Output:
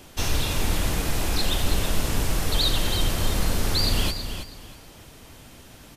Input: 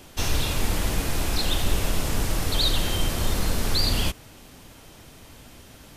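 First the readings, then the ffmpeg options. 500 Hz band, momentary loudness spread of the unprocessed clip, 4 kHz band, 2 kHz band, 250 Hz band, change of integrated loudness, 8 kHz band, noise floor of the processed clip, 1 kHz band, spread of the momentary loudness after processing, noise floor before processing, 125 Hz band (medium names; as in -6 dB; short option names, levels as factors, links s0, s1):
+0.5 dB, 4 LU, +0.5 dB, +0.5 dB, +0.5 dB, +0.5 dB, +0.5 dB, -48 dBFS, +0.5 dB, 10 LU, -48 dBFS, +0.5 dB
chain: -af "aecho=1:1:324|648|972:0.355|0.0852|0.0204"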